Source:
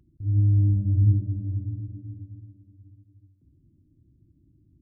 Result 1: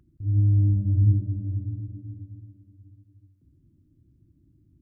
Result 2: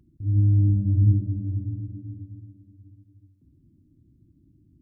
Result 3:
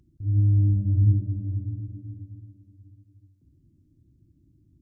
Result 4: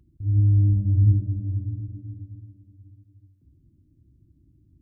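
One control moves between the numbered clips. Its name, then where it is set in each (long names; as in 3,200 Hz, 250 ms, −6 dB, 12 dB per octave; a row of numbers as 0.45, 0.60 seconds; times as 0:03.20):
parametric band, centre frequency: 1,400, 230, 6,200, 60 Hertz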